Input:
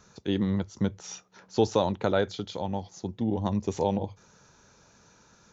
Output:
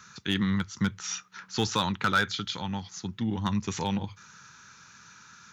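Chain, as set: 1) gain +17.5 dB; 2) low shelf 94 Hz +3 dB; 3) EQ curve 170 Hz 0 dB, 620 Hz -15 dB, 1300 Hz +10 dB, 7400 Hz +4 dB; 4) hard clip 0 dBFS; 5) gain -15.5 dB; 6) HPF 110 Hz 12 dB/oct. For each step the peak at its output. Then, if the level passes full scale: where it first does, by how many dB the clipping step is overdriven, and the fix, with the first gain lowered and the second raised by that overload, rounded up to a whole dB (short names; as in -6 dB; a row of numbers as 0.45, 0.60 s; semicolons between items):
+8.0, +8.0, +8.0, 0.0, -15.5, -13.0 dBFS; step 1, 8.0 dB; step 1 +9.5 dB, step 5 -7.5 dB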